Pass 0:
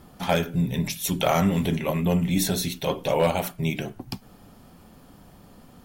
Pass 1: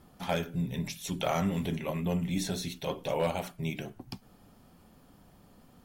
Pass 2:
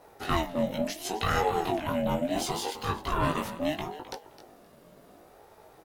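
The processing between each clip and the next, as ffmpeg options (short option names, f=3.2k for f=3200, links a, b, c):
-filter_complex "[0:a]acrossover=split=8900[a][b];[b]acompressor=threshold=-43dB:ratio=4:attack=1:release=60[c];[a][c]amix=inputs=2:normalize=0,volume=-8dB"
-filter_complex "[0:a]asplit=2[a][b];[b]adelay=19,volume=-2.5dB[c];[a][c]amix=inputs=2:normalize=0,aecho=1:1:261|522:0.2|0.0359,aeval=exprs='val(0)*sin(2*PI*520*n/s+520*0.25/0.72*sin(2*PI*0.72*n/s))':c=same,volume=4dB"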